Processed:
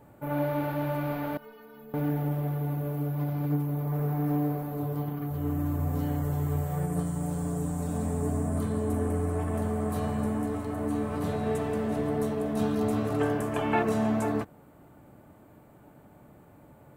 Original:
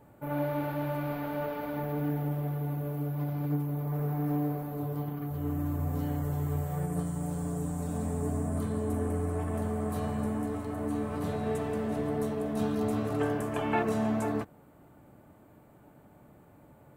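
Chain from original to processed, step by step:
0:01.37–0:01.94: stiff-string resonator 220 Hz, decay 0.34 s, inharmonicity 0.008
level +2.5 dB

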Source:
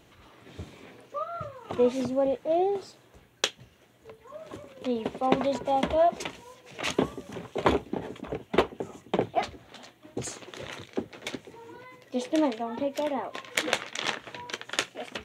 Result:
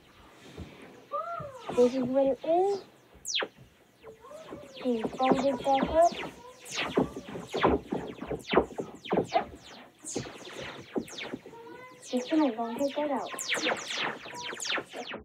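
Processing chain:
every frequency bin delayed by itself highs early, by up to 187 ms

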